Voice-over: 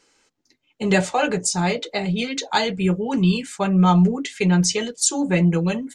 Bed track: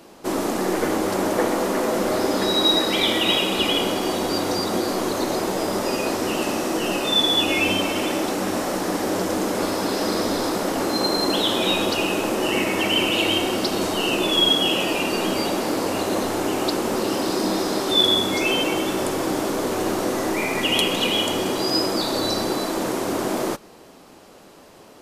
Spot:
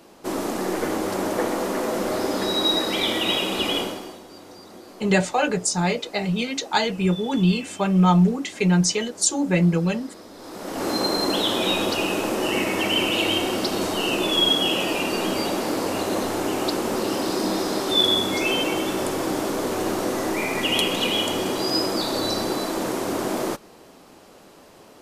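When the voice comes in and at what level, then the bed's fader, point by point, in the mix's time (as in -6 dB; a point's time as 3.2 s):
4.20 s, -1.0 dB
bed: 3.79 s -3 dB
4.24 s -20.5 dB
10.33 s -20.5 dB
10.88 s -1.5 dB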